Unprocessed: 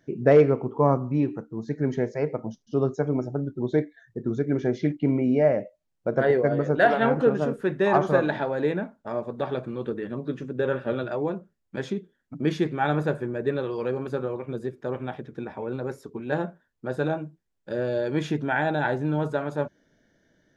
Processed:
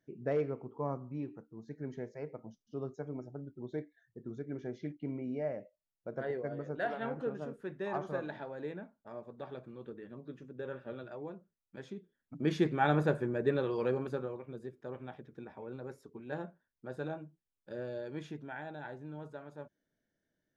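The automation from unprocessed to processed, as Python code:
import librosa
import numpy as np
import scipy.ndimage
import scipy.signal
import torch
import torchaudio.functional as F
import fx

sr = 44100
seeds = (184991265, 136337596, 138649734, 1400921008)

y = fx.gain(x, sr, db=fx.line((11.88, -16.0), (12.64, -4.0), (13.92, -4.0), (14.47, -13.0), (17.81, -13.0), (18.66, -19.5)))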